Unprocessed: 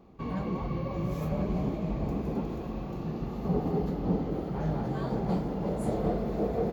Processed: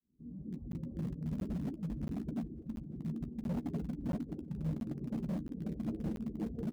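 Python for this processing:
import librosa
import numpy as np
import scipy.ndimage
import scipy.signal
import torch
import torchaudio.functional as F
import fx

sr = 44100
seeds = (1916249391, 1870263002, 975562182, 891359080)

p1 = fx.fade_in_head(x, sr, length_s=0.98)
p2 = fx.dereverb_blind(p1, sr, rt60_s=1.4)
p3 = fx.ladder_lowpass(p2, sr, hz=300.0, resonance_pct=50)
p4 = fx.quant_dither(p3, sr, seeds[0], bits=6, dither='none')
p5 = p3 + F.gain(torch.from_numpy(p4), -5.0).numpy()
p6 = np.clip(10.0 ** (34.5 / 20.0) * p5, -1.0, 1.0) / 10.0 ** (34.5 / 20.0)
p7 = fx.doubler(p6, sr, ms=13.0, db=-10.5)
p8 = p7 + 10.0 ** (-24.0 / 20.0) * np.pad(p7, (int(549 * sr / 1000.0), 0))[:len(p7)]
p9 = fx.buffer_crackle(p8, sr, first_s=0.72, period_s=0.68, block=512, kind='zero')
y = F.gain(torch.from_numpy(p9), 2.5).numpy()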